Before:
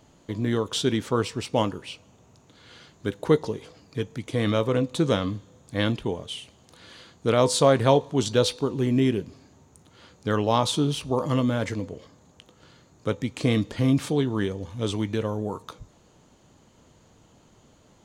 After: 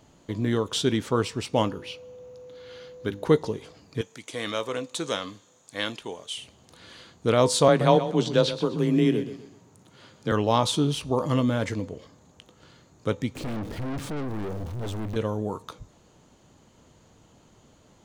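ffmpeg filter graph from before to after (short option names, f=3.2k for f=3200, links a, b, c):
-filter_complex "[0:a]asettb=1/sr,asplit=3[a][b][c];[a]atrim=end=1.684[d];[b]atrim=start=1.68:end=3.26,asetpts=PTS-STARTPTS,afade=t=in:d=0.004:c=qsin,afade=t=out:st=1.576:d=0.004:c=qsin,equalizer=f=8.1k:t=o:w=0.25:g=-14,bandreject=f=50:t=h:w=6,bandreject=f=100:t=h:w=6,bandreject=f=150:t=h:w=6,bandreject=f=200:t=h:w=6,bandreject=f=250:t=h:w=6,bandreject=f=300:t=h:w=6,bandreject=f=350:t=h:w=6,aeval=exprs='val(0)+0.00794*sin(2*PI*500*n/s)':c=same[e];[c]atrim=start=3.256[f];[d][e]acrossfade=d=0.004:c1=hsin:c2=qsin[g];[g][f]acrossfade=d=0.004:c1=qsin:c2=hsin,asettb=1/sr,asplit=3[h][i][j];[h]atrim=end=4.014[k];[i]atrim=start=4.01:end=6.38,asetpts=PTS-STARTPTS,afade=t=in:d=0.004:c=qsin,afade=t=out:st=2.366:d=0.004:c=qsin,highpass=f=880:p=1,equalizer=f=7.2k:t=o:w=0.92:g=5.5[l];[j]atrim=start=6.376[m];[k][l]acrossfade=d=0.004:c1=hsin:c2=qsin[n];[n][m]acrossfade=d=0.004:c1=qsin:c2=hsin,asettb=1/sr,asplit=3[o][p][q];[o]atrim=end=7.684[r];[p]atrim=start=7.68:end=10.32,asetpts=PTS-STARTPTS,afade=t=in:d=0.004:c=qsin,afade=t=out:st=2.636:d=0.004:c=qsin,acrossover=split=5100[s][t];[t]acompressor=threshold=-48dB:ratio=4:attack=1:release=60[u];[s][u]amix=inputs=2:normalize=0,afreqshift=23,aecho=1:1:126|252|378|504:0.251|0.0879|0.0308|0.0108,atrim=end_sample=116424[v];[q]atrim=start=10.316[w];[r][v]acrossfade=d=0.004:c1=hsin:c2=qsin[x];[x][w]acrossfade=d=0.004:c1=qsin:c2=hsin,asettb=1/sr,asplit=3[y][z][aa];[y]atrim=end=13.354[ab];[z]atrim=start=13.35:end=15.16,asetpts=PTS-STARTPTS,afade=t=in:d=0.004:c=qsin,afade=t=out:st=1.806:d=0.004:c=qsin,aeval=exprs='val(0)+0.5*0.0168*sgn(val(0))':c=same,tiltshelf=f=650:g=5.5,aeval=exprs='(tanh(31.6*val(0)+0.4)-tanh(0.4))/31.6':c=same[ac];[aa]atrim=start=15.156[ad];[ab][ac]acrossfade=d=0.004:c1=hsin:c2=qsin[ae];[ae][ad]acrossfade=d=0.004:c1=qsin:c2=hsin"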